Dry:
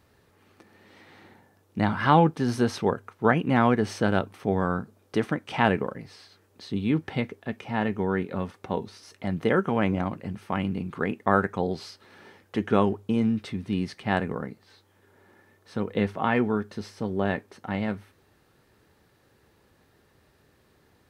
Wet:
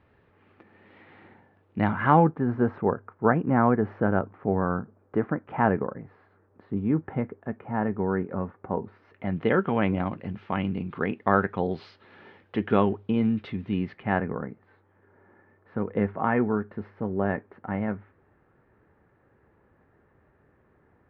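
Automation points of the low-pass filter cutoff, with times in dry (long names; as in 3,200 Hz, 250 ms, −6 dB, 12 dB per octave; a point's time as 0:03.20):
low-pass filter 24 dB per octave
0:01.81 2,800 Hz
0:02.41 1,600 Hz
0:08.79 1,600 Hz
0:09.55 3,400 Hz
0:13.55 3,400 Hz
0:14.33 1,900 Hz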